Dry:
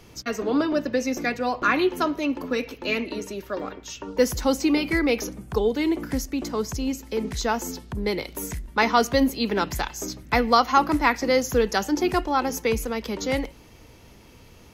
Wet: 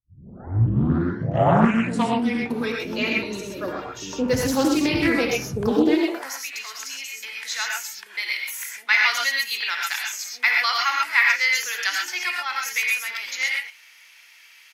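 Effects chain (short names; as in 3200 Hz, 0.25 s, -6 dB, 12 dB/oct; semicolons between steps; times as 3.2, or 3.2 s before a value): tape start at the beginning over 2.70 s; high-pass sweep 110 Hz -> 2000 Hz, 5.53–6.33; bands offset in time lows, highs 0.11 s, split 410 Hz; non-linear reverb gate 0.15 s rising, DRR -1 dB; Doppler distortion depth 0.4 ms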